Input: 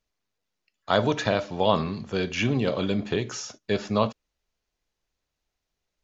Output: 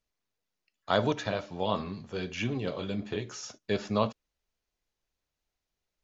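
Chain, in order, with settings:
0:01.13–0:03.43: flanger 1.5 Hz, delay 8.8 ms, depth 4.3 ms, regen −34%
level −4 dB

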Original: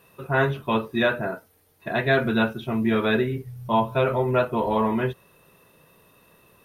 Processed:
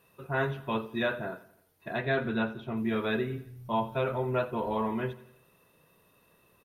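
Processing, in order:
0:01.97–0:02.76: high-shelf EQ 8,200 Hz → 4,500 Hz −11 dB
repeating echo 86 ms, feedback 52%, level −18 dB
level −8 dB

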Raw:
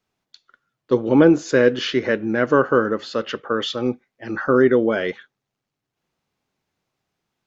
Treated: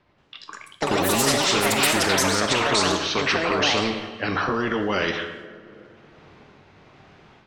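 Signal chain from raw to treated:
pitch glide at a constant tempo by −4 semitones ending unshifted
low-pass that shuts in the quiet parts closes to 2,900 Hz, open at −15 dBFS
automatic gain control gain up to 12.5 dB
brickwall limiter −12.5 dBFS, peak gain reduction 11.5 dB
delay with pitch and tempo change per echo 183 ms, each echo +6 semitones, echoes 3
coupled-rooms reverb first 0.7 s, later 3.1 s, from −27 dB, DRR 8.5 dB
every bin compressed towards the loudest bin 2 to 1

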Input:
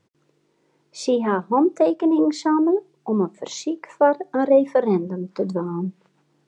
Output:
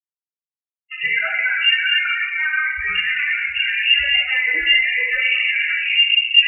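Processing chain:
delay that plays each chunk backwards 435 ms, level −2.5 dB
source passing by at 0:02.60, 20 m/s, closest 25 metres
noise gate with hold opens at −37 dBFS
formants moved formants +5 semitones
leveller curve on the samples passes 5
in parallel at −1 dB: compressor whose output falls as the input rises −16 dBFS, ratio −0.5
on the sum: inverse Chebyshev high-pass filter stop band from 190 Hz, stop band 60 dB
comparator with hysteresis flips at −23 dBFS
flanger 0.93 Hz, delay 4.8 ms, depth 4.1 ms, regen +82%
spectral peaks only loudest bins 8
rectangular room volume 520 cubic metres, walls mixed, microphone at 1.9 metres
voice inversion scrambler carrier 2,800 Hz
level −3.5 dB

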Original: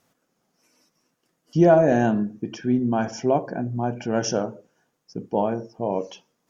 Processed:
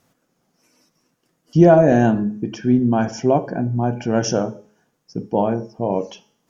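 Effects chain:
low-shelf EQ 230 Hz +5.5 dB
hum removal 211.2 Hz, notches 38
level +3 dB

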